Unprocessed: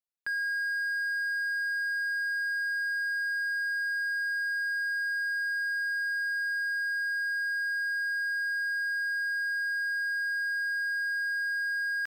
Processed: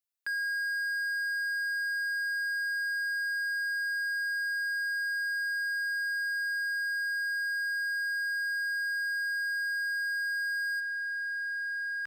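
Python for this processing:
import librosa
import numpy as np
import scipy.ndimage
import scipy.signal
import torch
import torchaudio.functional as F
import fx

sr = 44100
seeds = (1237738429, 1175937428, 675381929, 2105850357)

y = fx.tilt_eq(x, sr, slope=fx.steps((0.0, 2.0), (10.79, -1.5)))
y = y * 10.0 ** (-2.5 / 20.0)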